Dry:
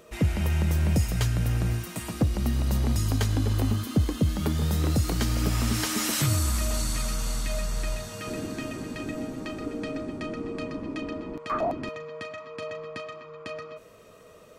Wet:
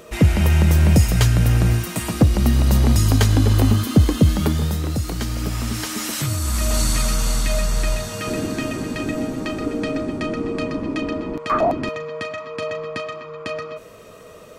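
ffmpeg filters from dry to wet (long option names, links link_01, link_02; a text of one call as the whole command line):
ffmpeg -i in.wav -af "volume=17.5dB,afade=type=out:start_time=4.28:duration=0.54:silence=0.375837,afade=type=in:start_time=6.39:duration=0.43:silence=0.398107" out.wav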